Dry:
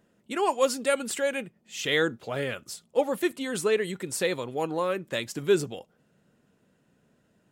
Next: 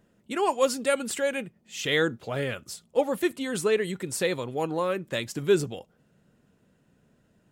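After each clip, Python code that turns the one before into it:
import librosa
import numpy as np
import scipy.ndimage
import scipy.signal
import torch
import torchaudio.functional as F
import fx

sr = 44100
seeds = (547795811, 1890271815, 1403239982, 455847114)

y = fx.low_shelf(x, sr, hz=110.0, db=9.0)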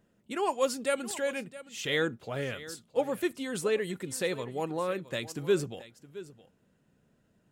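y = x + 10.0 ** (-16.5 / 20.0) * np.pad(x, (int(667 * sr / 1000.0), 0))[:len(x)]
y = y * 10.0 ** (-4.5 / 20.0)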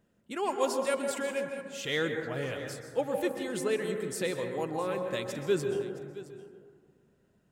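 y = fx.rev_plate(x, sr, seeds[0], rt60_s=1.7, hf_ratio=0.25, predelay_ms=115, drr_db=4.5)
y = y * 10.0 ** (-2.0 / 20.0)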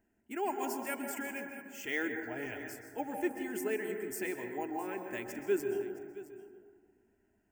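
y = np.repeat(scipy.signal.resample_poly(x, 1, 2), 2)[:len(x)]
y = fx.fixed_phaser(y, sr, hz=780.0, stages=8)
y = y * 10.0 ** (-1.0 / 20.0)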